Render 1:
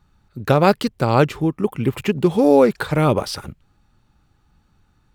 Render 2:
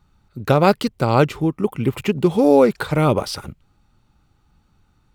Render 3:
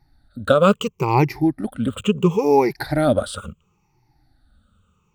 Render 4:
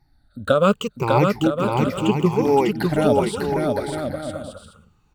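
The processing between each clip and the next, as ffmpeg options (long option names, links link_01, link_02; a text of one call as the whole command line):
ffmpeg -i in.wav -af "bandreject=frequency=1700:width=13" out.wav
ffmpeg -i in.wav -af "afftfilt=real='re*pow(10,20/40*sin(2*PI*(0.76*log(max(b,1)*sr/1024/100)/log(2)-(-0.72)*(pts-256)/sr)))':imag='im*pow(10,20/40*sin(2*PI*(0.76*log(max(b,1)*sr/1024/100)/log(2)-(-0.72)*(pts-256)/sr)))':win_size=1024:overlap=0.75,volume=-5dB" out.wav
ffmpeg -i in.wav -af "aecho=1:1:600|960|1176|1306|1383:0.631|0.398|0.251|0.158|0.1,volume=-2dB" out.wav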